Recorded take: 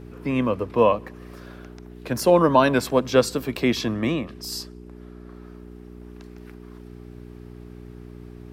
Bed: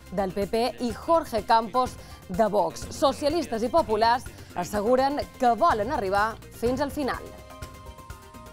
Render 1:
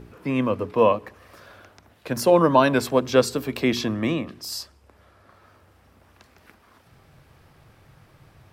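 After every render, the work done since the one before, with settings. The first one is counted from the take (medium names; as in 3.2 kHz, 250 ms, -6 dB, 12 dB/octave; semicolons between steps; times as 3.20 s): de-hum 60 Hz, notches 7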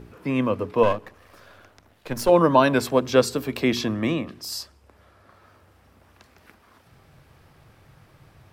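0.83–2.29 s: partial rectifier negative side -7 dB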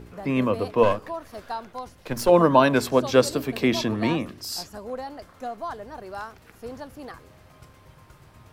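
add bed -12 dB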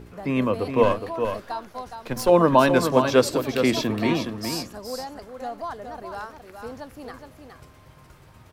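delay 416 ms -7 dB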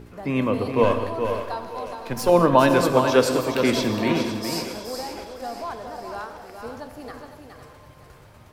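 two-band feedback delay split 350 Hz, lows 119 ms, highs 509 ms, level -12 dB; gated-style reverb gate 240 ms flat, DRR 8 dB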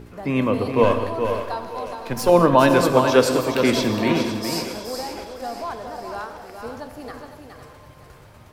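trim +2 dB; peak limiter -2 dBFS, peak gain reduction 1.5 dB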